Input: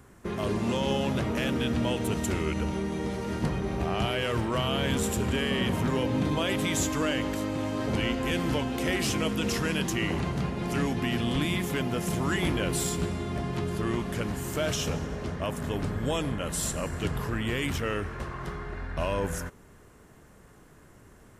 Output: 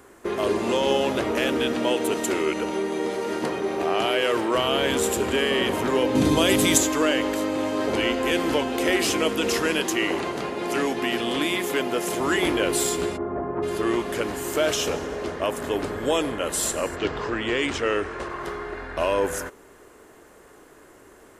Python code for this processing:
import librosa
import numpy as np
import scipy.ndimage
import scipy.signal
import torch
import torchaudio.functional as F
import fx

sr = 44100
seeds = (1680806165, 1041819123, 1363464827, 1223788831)

y = fx.highpass(x, sr, hz=150.0, slope=12, at=(1.72, 4.55))
y = fx.bass_treble(y, sr, bass_db=12, treble_db=10, at=(6.15, 6.78))
y = fx.highpass(y, sr, hz=170.0, slope=6, at=(9.8, 12.2))
y = fx.lowpass(y, sr, hz=1400.0, slope=24, at=(13.16, 13.62), fade=0.02)
y = fx.lowpass(y, sr, hz=fx.line((16.95, 5400.0), (18.28, 10000.0)), slope=24, at=(16.95, 18.28), fade=0.02)
y = fx.low_shelf_res(y, sr, hz=240.0, db=-11.5, q=1.5)
y = fx.notch(y, sr, hz=5600.0, q=28.0)
y = y * librosa.db_to_amplitude(6.0)